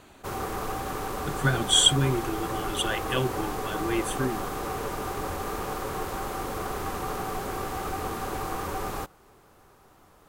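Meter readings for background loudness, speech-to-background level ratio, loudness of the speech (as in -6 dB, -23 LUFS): -32.5 LUFS, 6.5 dB, -26.0 LUFS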